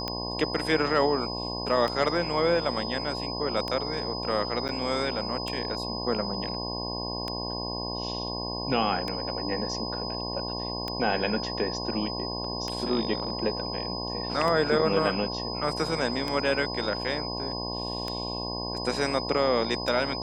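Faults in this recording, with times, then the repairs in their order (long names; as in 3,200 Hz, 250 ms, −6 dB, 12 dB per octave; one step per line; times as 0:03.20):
mains buzz 60 Hz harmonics 18 −35 dBFS
scratch tick 33 1/3 rpm −16 dBFS
whistle 5,000 Hz −34 dBFS
0:04.68–0:04.69: drop-out 8.5 ms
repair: click removal
hum removal 60 Hz, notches 18
notch filter 5,000 Hz, Q 30
repair the gap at 0:04.68, 8.5 ms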